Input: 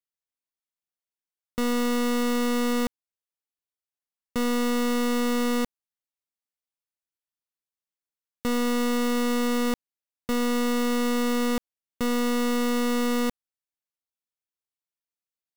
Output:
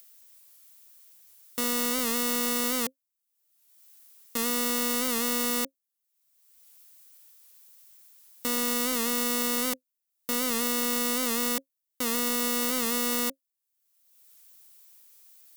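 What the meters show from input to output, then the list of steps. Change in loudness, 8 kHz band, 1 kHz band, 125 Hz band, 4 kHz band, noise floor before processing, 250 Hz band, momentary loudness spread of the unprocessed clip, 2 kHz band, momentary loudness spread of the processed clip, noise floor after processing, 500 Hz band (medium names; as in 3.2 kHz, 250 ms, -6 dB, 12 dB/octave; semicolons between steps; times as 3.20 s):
-0.5 dB, +7.5 dB, -3.5 dB, no reading, +2.0 dB, under -85 dBFS, -8.0 dB, 6 LU, -1.5 dB, 7 LU, -84 dBFS, -6.0 dB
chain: waveshaping leveller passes 1; upward compressor, threshold -44 dBFS; RIAA curve recording; small resonant body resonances 270/540 Hz, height 9 dB, ringing for 95 ms; warped record 78 rpm, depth 100 cents; trim -4 dB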